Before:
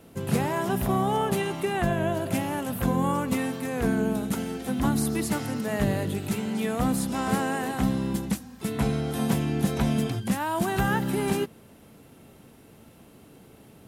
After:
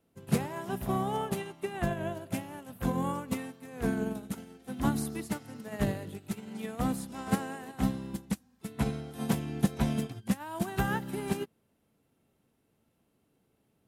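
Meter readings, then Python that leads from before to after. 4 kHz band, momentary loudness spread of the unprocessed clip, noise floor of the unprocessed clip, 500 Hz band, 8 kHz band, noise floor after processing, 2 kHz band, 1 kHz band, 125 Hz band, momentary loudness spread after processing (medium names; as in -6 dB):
-8.0 dB, 4 LU, -52 dBFS, -8.0 dB, -8.0 dB, -74 dBFS, -8.0 dB, -7.5 dB, -6.5 dB, 9 LU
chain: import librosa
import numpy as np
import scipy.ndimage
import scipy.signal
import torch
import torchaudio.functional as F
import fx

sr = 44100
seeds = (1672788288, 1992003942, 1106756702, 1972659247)

y = fx.upward_expand(x, sr, threshold_db=-34.0, expansion=2.5)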